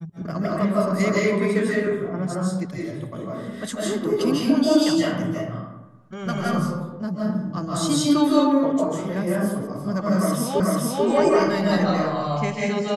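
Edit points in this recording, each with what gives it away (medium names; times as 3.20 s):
10.60 s: repeat of the last 0.44 s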